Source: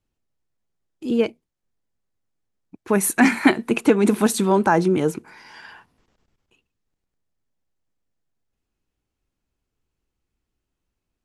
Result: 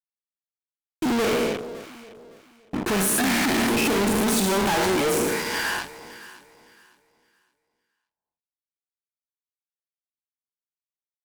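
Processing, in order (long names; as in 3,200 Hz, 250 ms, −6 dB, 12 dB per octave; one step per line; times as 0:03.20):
peak hold with a decay on every bin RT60 0.69 s
0:04.74–0:05.65: low-shelf EQ 290 Hz −11 dB
leveller curve on the samples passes 3
fuzz pedal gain 47 dB, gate −51 dBFS
delay that swaps between a low-pass and a high-pass 281 ms, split 870 Hz, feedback 51%, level −11 dB
level −8 dB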